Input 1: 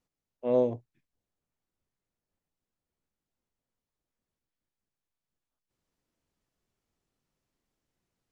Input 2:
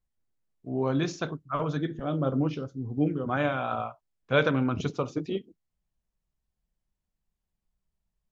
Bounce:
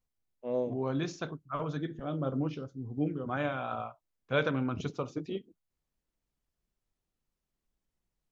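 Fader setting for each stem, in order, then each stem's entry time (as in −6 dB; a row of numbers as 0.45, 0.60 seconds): −7.0, −5.5 decibels; 0.00, 0.00 seconds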